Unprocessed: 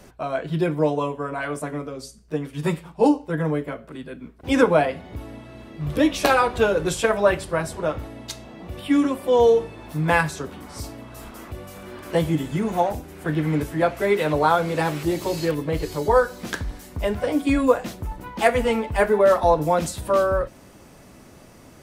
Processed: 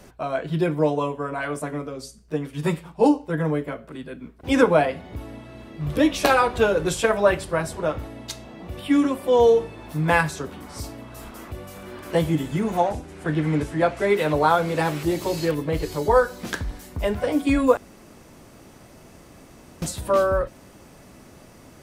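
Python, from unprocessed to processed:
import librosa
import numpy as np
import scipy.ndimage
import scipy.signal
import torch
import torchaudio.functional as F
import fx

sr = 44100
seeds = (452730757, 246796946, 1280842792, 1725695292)

y = fx.lowpass(x, sr, hz=10000.0, slope=24, at=(12.77, 14.1))
y = fx.edit(y, sr, fx.room_tone_fill(start_s=17.77, length_s=2.05), tone=tone)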